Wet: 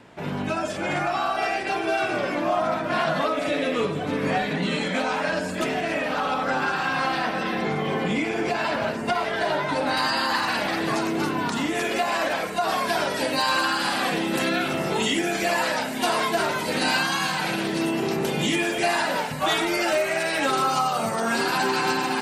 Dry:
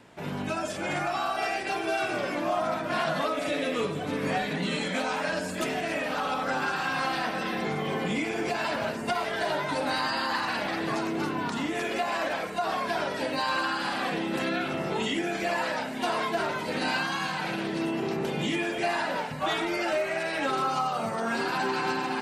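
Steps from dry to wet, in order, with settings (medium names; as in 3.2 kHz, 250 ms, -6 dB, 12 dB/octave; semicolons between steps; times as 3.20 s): treble shelf 6 kHz -6.5 dB, from 9.97 s +6 dB, from 12.68 s +11.5 dB; trim +4.5 dB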